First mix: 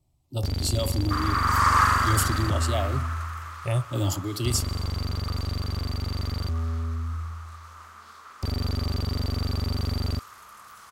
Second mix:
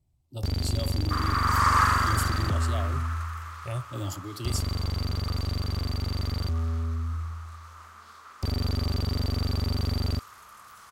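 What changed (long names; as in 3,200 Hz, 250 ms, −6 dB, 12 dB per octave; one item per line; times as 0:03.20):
speech −7.5 dB
second sound: send off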